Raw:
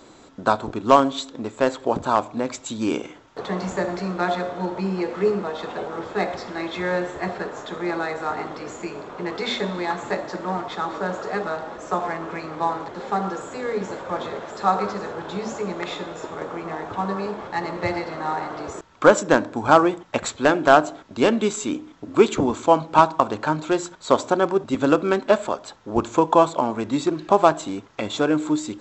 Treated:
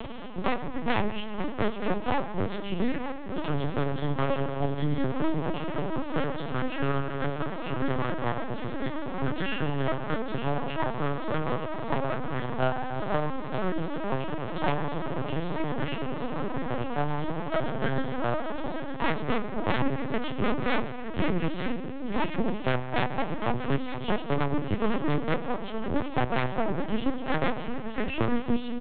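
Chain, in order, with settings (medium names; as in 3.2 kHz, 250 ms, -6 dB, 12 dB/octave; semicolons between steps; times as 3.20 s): frequency-domain pitch shifter -4.5 st; wavefolder -15.5 dBFS; delay 913 ms -13.5 dB; reverberation RT60 2.1 s, pre-delay 4 ms, DRR 9.5 dB; half-wave rectifier; bass shelf 130 Hz +3 dB; LPC vocoder at 8 kHz pitch kept; three bands compressed up and down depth 70%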